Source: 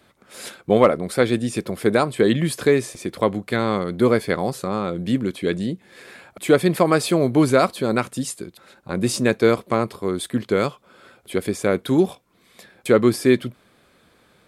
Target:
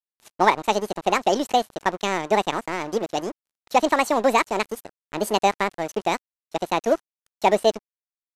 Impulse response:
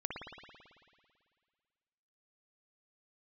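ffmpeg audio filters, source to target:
-af "aeval=exprs='sgn(val(0))*max(abs(val(0))-0.0237,0)':c=same,aresample=16000,aresample=44100,asetrate=76440,aresample=44100,volume=-1.5dB"

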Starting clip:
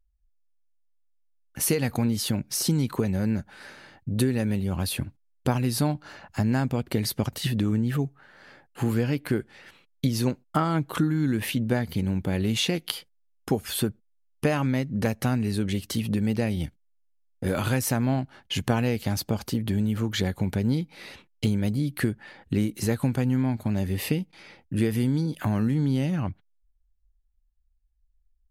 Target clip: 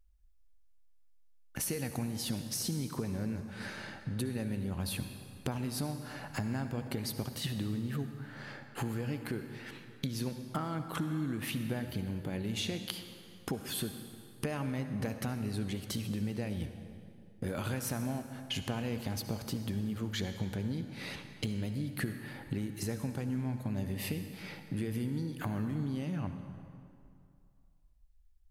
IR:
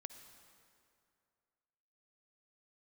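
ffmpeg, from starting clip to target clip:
-filter_complex "[0:a]acompressor=threshold=-42dB:ratio=3[a];[1:a]atrim=start_sample=2205,asetrate=42336,aresample=44100[b];[a][b]afir=irnorm=-1:irlink=0,volume=9dB"

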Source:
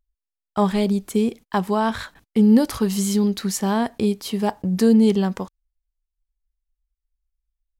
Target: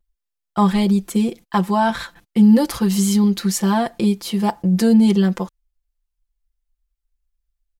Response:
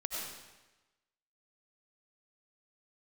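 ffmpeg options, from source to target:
-af "aecho=1:1:5.8:1"

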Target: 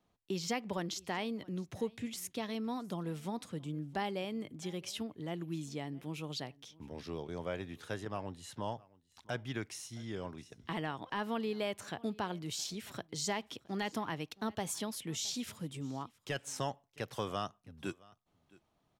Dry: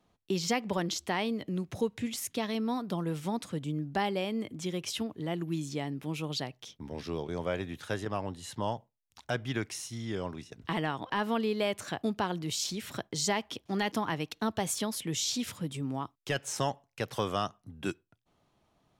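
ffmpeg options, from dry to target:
-af "aecho=1:1:667:0.0668,volume=-6dB"

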